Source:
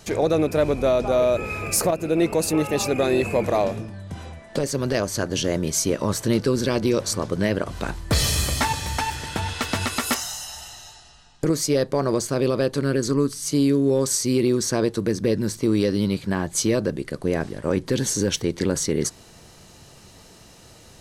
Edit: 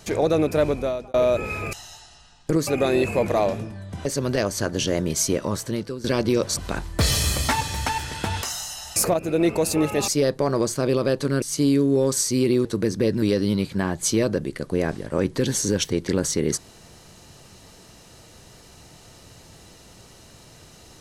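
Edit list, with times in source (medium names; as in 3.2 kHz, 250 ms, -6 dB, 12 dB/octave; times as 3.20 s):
0.65–1.14 s: fade out
1.73–2.85 s: swap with 10.67–11.61 s
4.23–4.62 s: delete
5.86–6.61 s: fade out, to -16 dB
7.14–7.69 s: delete
9.55–10.14 s: delete
12.95–13.36 s: delete
14.59–14.89 s: delete
15.46–15.74 s: delete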